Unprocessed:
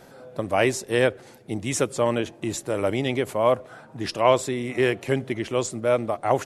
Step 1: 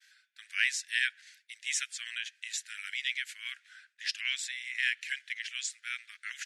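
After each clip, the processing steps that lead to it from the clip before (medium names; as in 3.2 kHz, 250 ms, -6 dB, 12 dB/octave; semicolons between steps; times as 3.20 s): steep high-pass 1.6 kHz 72 dB/octave; expander -55 dBFS; low-pass 6.8 kHz 12 dB/octave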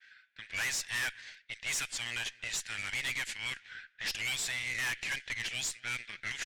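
valve stage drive 40 dB, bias 0.45; echo from a far wall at 40 m, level -24 dB; level-controlled noise filter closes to 2.2 kHz, open at -40 dBFS; trim +9 dB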